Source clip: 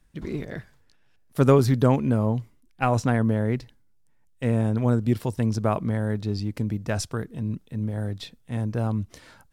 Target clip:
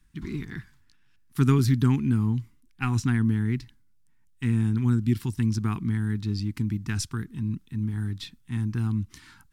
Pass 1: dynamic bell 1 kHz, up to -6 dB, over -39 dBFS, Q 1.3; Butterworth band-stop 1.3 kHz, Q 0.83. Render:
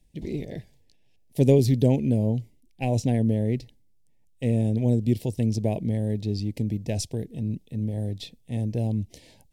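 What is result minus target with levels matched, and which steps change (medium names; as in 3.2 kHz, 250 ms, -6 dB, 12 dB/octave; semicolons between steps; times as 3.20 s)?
500 Hz band +11.0 dB
change: Butterworth band-stop 570 Hz, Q 0.83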